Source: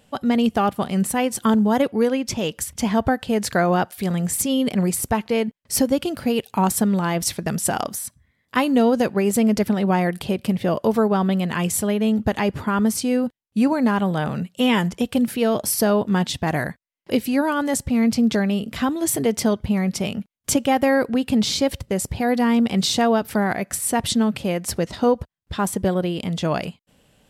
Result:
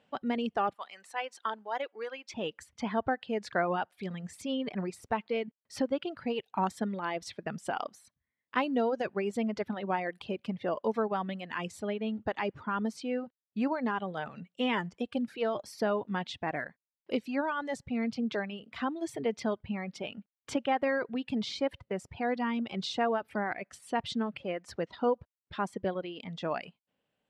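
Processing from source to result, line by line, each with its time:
0.74–2.34 s: high-pass 740 Hz
whole clip: high-pass 340 Hz 6 dB/octave; reverb removal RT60 1.7 s; low-pass 3.1 kHz 12 dB/octave; trim -7.5 dB

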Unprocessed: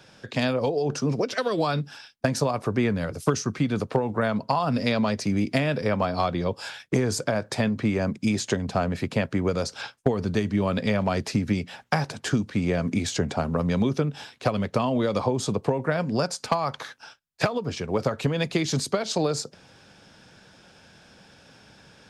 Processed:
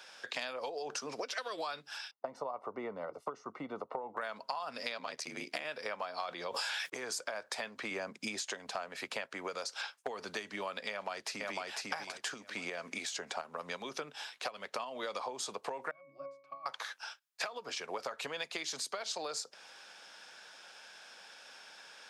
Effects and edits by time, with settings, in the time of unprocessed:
2.11–4.17 s: Savitzky-Golay filter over 65 samples
4.97–5.65 s: ring modulator 39 Hz
6.28–6.90 s: level flattener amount 100%
7.91–8.42 s: bass shelf 360 Hz +8 dB
10.90–11.67 s: echo throw 500 ms, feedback 25%, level -3 dB
12.34–15.03 s: tremolo saw up 2.8 Hz, depth 45%
15.91–16.66 s: pitch-class resonator C#, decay 0.45 s
whole clip: high-pass 800 Hz 12 dB/octave; compression 5:1, threshold -38 dBFS; trim +1.5 dB

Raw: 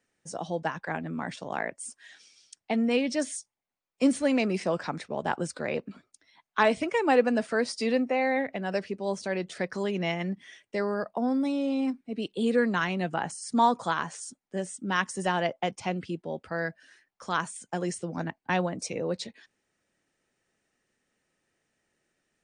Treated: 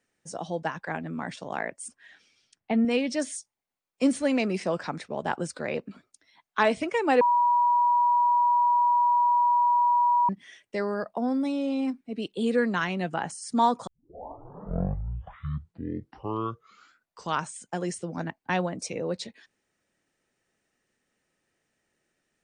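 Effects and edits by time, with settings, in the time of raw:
1.88–2.85 s: tone controls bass +6 dB, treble -14 dB
7.21–10.29 s: bleep 966 Hz -18.5 dBFS
13.87 s: tape start 3.80 s

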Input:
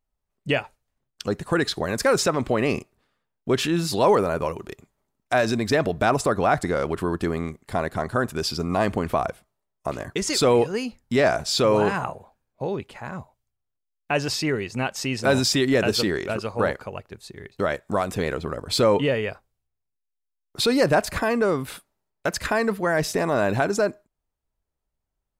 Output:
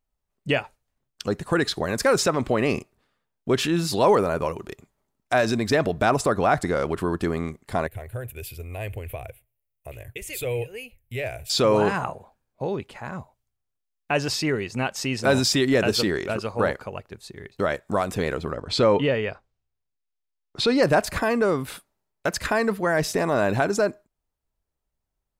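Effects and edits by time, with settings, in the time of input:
7.87–11.50 s: FFT filter 120 Hz 0 dB, 170 Hz -23 dB, 290 Hz -19 dB, 500 Hz -8 dB, 1.2 kHz -24 dB, 2.5 kHz 0 dB, 5.1 kHz -23 dB, 13 kHz +8 dB
18.52–20.83 s: low-pass 5.4 kHz

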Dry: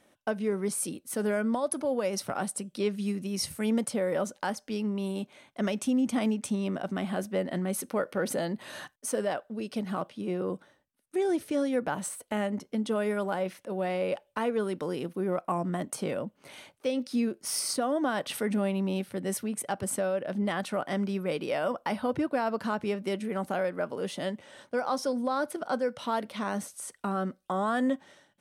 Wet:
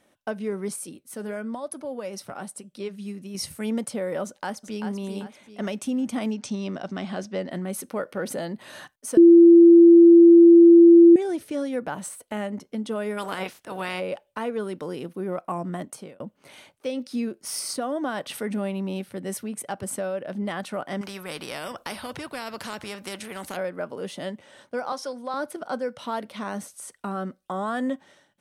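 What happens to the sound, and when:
0.76–3.35 s: flange 1 Hz, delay 1.2 ms, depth 4.8 ms, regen -81%
4.24–4.87 s: echo throw 390 ms, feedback 40%, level -7 dB
6.32–7.51 s: resonant low-pass 5.5 kHz, resonance Q 2.4
9.17–11.16 s: bleep 339 Hz -7.5 dBFS
13.17–13.99 s: spectral peaks clipped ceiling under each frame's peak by 20 dB
15.80–16.20 s: fade out
21.01–23.57 s: spectrum-flattening compressor 2:1
24.92–25.34 s: frequency weighting A

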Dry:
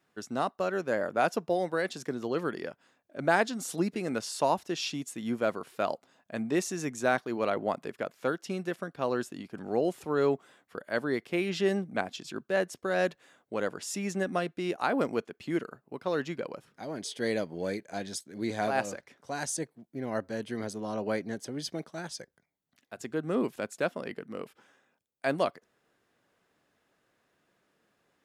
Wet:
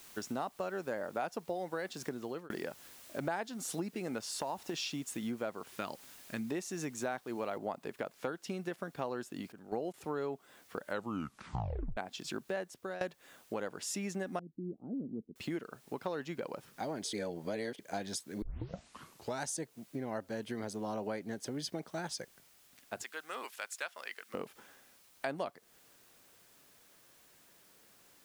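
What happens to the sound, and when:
2.04–2.50 s: fade out
4.34–4.74 s: compression 3:1, threshold -32 dBFS
5.74–6.50 s: peaking EQ 670 Hz -12.5 dB 1.2 oct
7.58 s: noise floor step -58 dB -67 dB
9.52–9.94 s: gate -33 dBFS, range -16 dB
10.84 s: tape stop 1.13 s
12.49–13.01 s: fade out, to -24 dB
14.39–15.36 s: four-pole ladder low-pass 310 Hz, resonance 35%
17.13–17.79 s: reverse
18.42 s: tape start 1.03 s
23.03–24.34 s: high-pass 1.4 kHz
whole clip: compression 5:1, threshold -39 dBFS; dynamic bell 840 Hz, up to +5 dB, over -58 dBFS, Q 3.9; trim +3 dB

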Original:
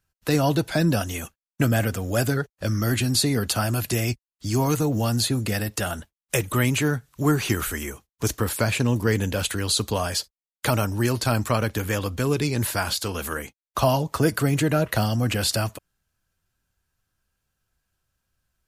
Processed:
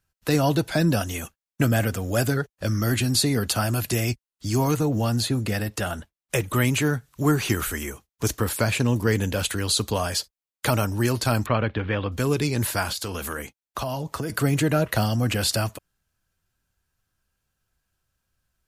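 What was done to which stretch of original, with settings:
4.71–6.53 s: treble shelf 4.7 kHz -5.5 dB
11.46–12.12 s: steep low-pass 3.6 kHz
12.86–14.30 s: compression, threshold -25 dBFS

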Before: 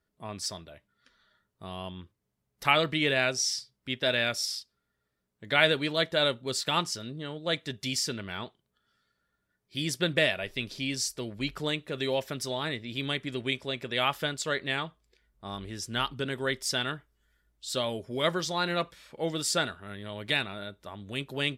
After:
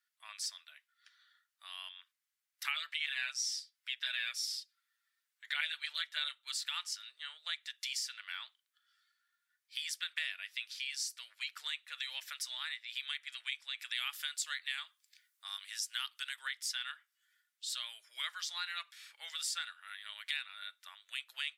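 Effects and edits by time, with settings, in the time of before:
2.75–6.54 s: comb 6.7 ms, depth 74%
13.79–16.36 s: treble shelf 4.6 kHz +10.5 dB
whole clip: inverse Chebyshev high-pass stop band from 250 Hz, stop band 80 dB; compression 2.5:1, threshold -40 dBFS; trim +1 dB

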